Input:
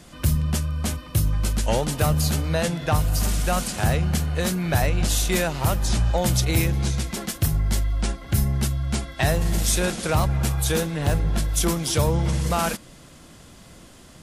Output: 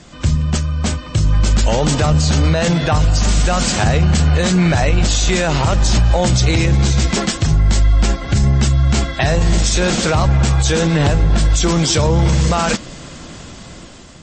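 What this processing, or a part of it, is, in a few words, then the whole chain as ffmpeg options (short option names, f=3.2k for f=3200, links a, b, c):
low-bitrate web radio: -af "dynaudnorm=f=500:g=5:m=14dB,alimiter=limit=-11.5dB:level=0:latency=1:release=28,volume=6dB" -ar 24000 -c:a libmp3lame -b:a 32k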